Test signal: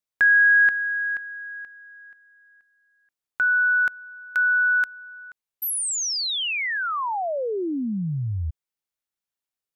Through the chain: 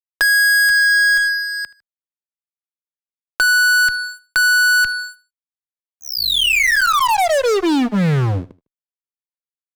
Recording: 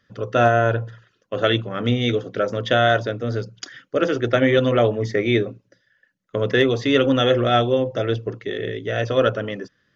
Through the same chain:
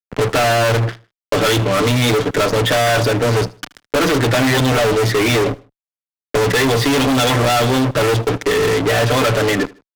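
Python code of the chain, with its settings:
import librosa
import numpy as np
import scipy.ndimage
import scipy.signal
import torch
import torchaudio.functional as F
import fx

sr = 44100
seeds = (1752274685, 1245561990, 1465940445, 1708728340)

p1 = fx.diode_clip(x, sr, knee_db=-14.0)
p2 = scipy.signal.sosfilt(scipy.signal.butter(2, 97.0, 'highpass', fs=sr, output='sos'), p1)
p3 = fx.env_lowpass(p2, sr, base_hz=910.0, full_db=-15.5)
p4 = fx.peak_eq(p3, sr, hz=2700.0, db=2.5, octaves=2.5)
p5 = p4 + 0.94 * np.pad(p4, (int(6.8 * sr / 1000.0), 0))[:len(p4)]
p6 = fx.fuzz(p5, sr, gain_db=33.0, gate_db=-35.0)
p7 = p6 + fx.echo_feedback(p6, sr, ms=77, feedback_pct=32, wet_db=-23, dry=0)
y = fx.band_squash(p7, sr, depth_pct=40)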